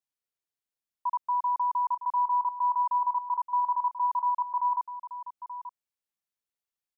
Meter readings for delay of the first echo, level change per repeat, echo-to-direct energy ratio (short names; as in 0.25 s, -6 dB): 0.881 s, no steady repeat, -11.5 dB